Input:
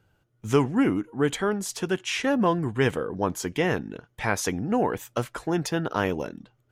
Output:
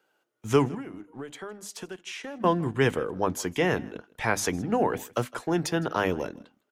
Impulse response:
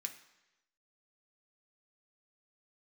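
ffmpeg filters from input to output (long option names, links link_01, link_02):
-filter_complex "[0:a]bandreject=frequency=50:width_type=h:width=6,bandreject=frequency=100:width_type=h:width=6,bandreject=frequency=150:width_type=h:width=6,bandreject=frequency=200:width_type=h:width=6,bandreject=frequency=250:width_type=h:width=6,bandreject=frequency=300:width_type=h:width=6,asettb=1/sr,asplit=3[link_01][link_02][link_03];[link_01]atrim=end=0.744[link_04];[link_02]atrim=start=0.74:end=2.44,asetpts=PTS-STARTPTS,afade=type=in:duration=0.004:curve=qsin,afade=type=out:start_time=1.696:duration=0.004:curve=qsin,acompressor=threshold=-36dB:ratio=6[link_05];[link_03]atrim=start=2.436[link_06];[link_04][link_05]acrossfade=duration=0.004:curve1=hsin:curve2=qsin[link_07];[link_07][link_06]acrossfade=duration=0.004:curve1=qsin:curve2=hsin,acrossover=split=280|770|2000[link_08][link_09][link_10][link_11];[link_08]aeval=exprs='sgn(val(0))*max(abs(val(0))-0.00299,0)':channel_layout=same[link_12];[link_12][link_09][link_10][link_11]amix=inputs=4:normalize=0,aecho=1:1:160:0.075"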